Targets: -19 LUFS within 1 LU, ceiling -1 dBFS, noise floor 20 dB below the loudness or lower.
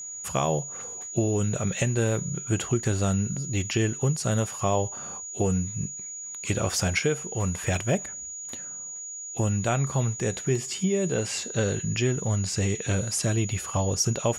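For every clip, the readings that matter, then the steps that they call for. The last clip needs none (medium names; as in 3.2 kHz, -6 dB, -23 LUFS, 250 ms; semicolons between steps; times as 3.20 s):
tick rate 43 per s; steady tone 6.8 kHz; tone level -35 dBFS; loudness -27.0 LUFS; peak level -12.5 dBFS; loudness target -19.0 LUFS
-> de-click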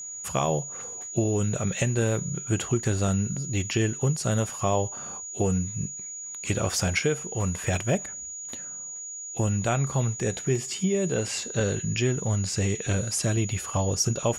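tick rate 0.28 per s; steady tone 6.8 kHz; tone level -35 dBFS
-> band-stop 6.8 kHz, Q 30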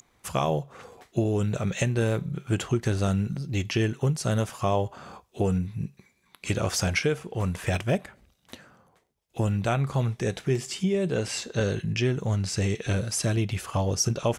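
steady tone not found; loudness -27.5 LUFS; peak level -12.5 dBFS; loudness target -19.0 LUFS
-> trim +8.5 dB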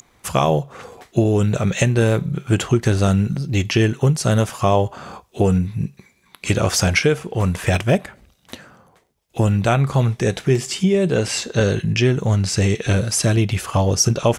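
loudness -19.0 LUFS; peak level -4.0 dBFS; noise floor -58 dBFS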